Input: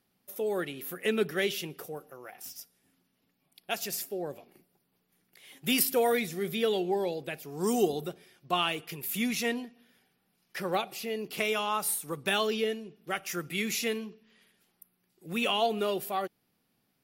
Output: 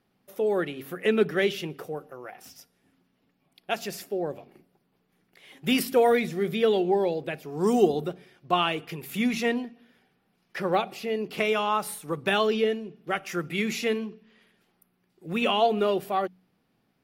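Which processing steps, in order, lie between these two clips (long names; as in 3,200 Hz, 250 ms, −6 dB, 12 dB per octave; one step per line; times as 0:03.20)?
low-pass filter 2,100 Hz 6 dB per octave
hum removal 46.05 Hz, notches 6
level +6 dB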